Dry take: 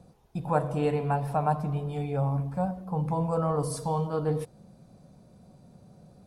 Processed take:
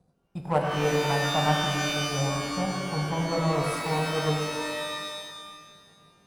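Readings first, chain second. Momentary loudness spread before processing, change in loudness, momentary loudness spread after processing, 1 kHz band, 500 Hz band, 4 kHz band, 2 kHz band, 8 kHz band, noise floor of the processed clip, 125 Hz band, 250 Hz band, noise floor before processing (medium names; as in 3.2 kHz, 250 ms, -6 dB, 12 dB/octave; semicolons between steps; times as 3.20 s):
5 LU, +2.0 dB, 13 LU, +2.5 dB, +2.0 dB, +21.5 dB, +15.0 dB, +10.5 dB, -65 dBFS, -0.5 dB, +1.5 dB, -57 dBFS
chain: multi-head delay 101 ms, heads first and third, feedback 64%, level -15 dB; power-law waveshaper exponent 1.4; pitch-shifted reverb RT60 1.8 s, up +12 st, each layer -2 dB, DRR 3.5 dB; trim +2 dB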